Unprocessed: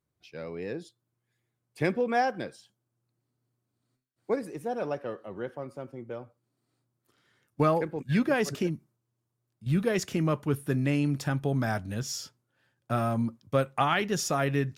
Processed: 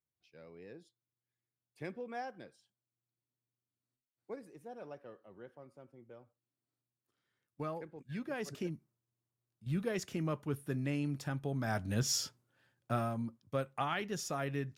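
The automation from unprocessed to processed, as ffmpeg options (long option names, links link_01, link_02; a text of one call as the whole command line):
ffmpeg -i in.wav -af "volume=2.5dB,afade=type=in:start_time=8.22:duration=0.51:silence=0.446684,afade=type=in:start_time=11.61:duration=0.55:silence=0.266073,afade=type=out:start_time=12.16:duration=0.99:silence=0.237137" out.wav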